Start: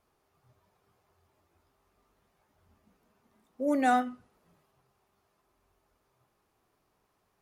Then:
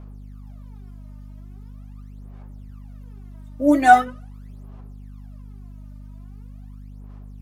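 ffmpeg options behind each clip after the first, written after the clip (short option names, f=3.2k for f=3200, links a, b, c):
-af "aphaser=in_gain=1:out_gain=1:delay=3.3:decay=0.78:speed=0.42:type=sinusoidal,aeval=exprs='val(0)+0.00631*(sin(2*PI*50*n/s)+sin(2*PI*2*50*n/s)/2+sin(2*PI*3*50*n/s)/3+sin(2*PI*4*50*n/s)/4+sin(2*PI*5*50*n/s)/5)':c=same,volume=6dB"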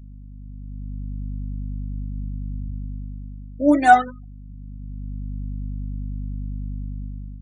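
-af "afftfilt=real='re*gte(hypot(re,im),0.0224)':imag='im*gte(hypot(re,im),0.0224)':win_size=1024:overlap=0.75,dynaudnorm=f=320:g=5:m=12dB,volume=-1dB"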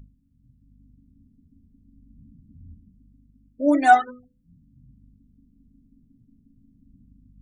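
-af "bandreject=f=50:t=h:w=6,bandreject=f=100:t=h:w=6,bandreject=f=150:t=h:w=6,bandreject=f=200:t=h:w=6,bandreject=f=250:t=h:w=6,bandreject=f=300:t=h:w=6,bandreject=f=350:t=h:w=6,bandreject=f=400:t=h:w=6,bandreject=f=450:t=h:w=6,bandreject=f=500:t=h:w=6,volume=-2dB"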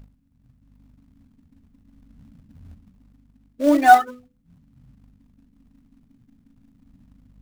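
-filter_complex "[0:a]equalizer=f=750:w=0.35:g=3,asplit=2[a][b];[b]acrusher=bits=2:mode=log:mix=0:aa=0.000001,volume=-6dB[c];[a][c]amix=inputs=2:normalize=0,volume=-3.5dB"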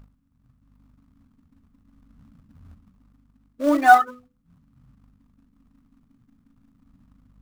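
-af "equalizer=f=1.2k:w=2.3:g=9.5,volume=-3.5dB"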